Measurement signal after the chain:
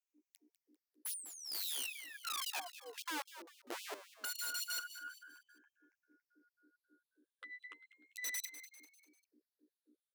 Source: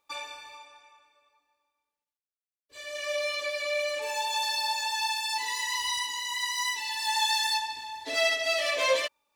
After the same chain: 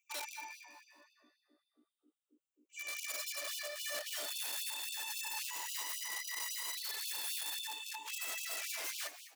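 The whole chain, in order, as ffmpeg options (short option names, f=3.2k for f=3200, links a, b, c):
-filter_complex "[0:a]afftfilt=real='re*pow(10,23/40*sin(2*PI*(0.7*log(max(b,1)*sr/1024/100)/log(2)-(-0.36)*(pts-256)/sr)))':imag='im*pow(10,23/40*sin(2*PI*(0.7*log(max(b,1)*sr/1024/100)/log(2)-(-0.36)*(pts-256)/sr)))':win_size=1024:overlap=0.75,highpass=f=48:w=0.5412,highpass=f=48:w=1.3066,bandreject=f=233.6:t=h:w=4,bandreject=f=467.2:t=h:w=4,bandreject=f=700.8:t=h:w=4,bandreject=f=934.4:t=h:w=4,aeval=exprs='val(0)+0.00398*(sin(2*PI*60*n/s)+sin(2*PI*2*60*n/s)/2+sin(2*PI*3*60*n/s)/3+sin(2*PI*4*60*n/s)/4+sin(2*PI*5*60*n/s)/5)':c=same,asoftclip=type=tanh:threshold=-21dB,alimiter=level_in=3dB:limit=-24dB:level=0:latency=1:release=32,volume=-3dB,flanger=delay=9.3:depth=1.5:regen=9:speed=1.6:shape=triangular,aeval=exprs='0.0447*(cos(1*acos(clip(val(0)/0.0447,-1,1)))-cos(1*PI/2))+0.000562*(cos(3*acos(clip(val(0)/0.0447,-1,1)))-cos(3*PI/2))+0.00178*(cos(6*acos(clip(val(0)/0.0447,-1,1)))-cos(6*PI/2))':c=same,aeval=exprs='(mod(35.5*val(0)+1,2)-1)/35.5':c=same,asplit=5[a][b][c][d][e];[b]adelay=198,afreqshift=71,volume=-12.5dB[f];[c]adelay=396,afreqshift=142,volume=-19.8dB[g];[d]adelay=594,afreqshift=213,volume=-27.2dB[h];[e]adelay=792,afreqshift=284,volume=-34.5dB[i];[a][f][g][h][i]amix=inputs=5:normalize=0,afftfilt=real='re*gte(b*sr/1024,230*pow(2600/230,0.5+0.5*sin(2*PI*3.7*pts/sr)))':imag='im*gte(b*sr/1024,230*pow(2600/230,0.5+0.5*sin(2*PI*3.7*pts/sr)))':win_size=1024:overlap=0.75,volume=-4.5dB"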